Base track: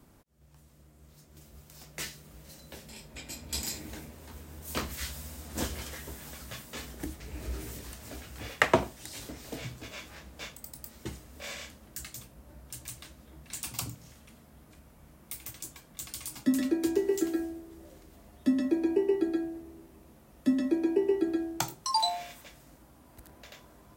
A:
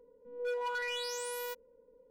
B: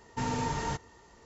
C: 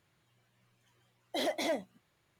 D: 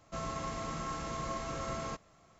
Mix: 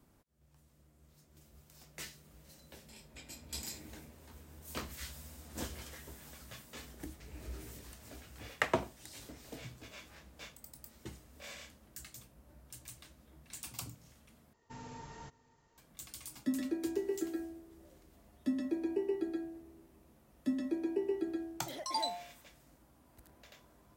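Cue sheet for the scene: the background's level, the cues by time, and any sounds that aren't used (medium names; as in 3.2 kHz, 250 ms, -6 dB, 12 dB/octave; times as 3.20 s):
base track -8 dB
14.53 s: replace with B -17 dB + delay 547 ms -22 dB
20.32 s: add C -12.5 dB
not used: A, D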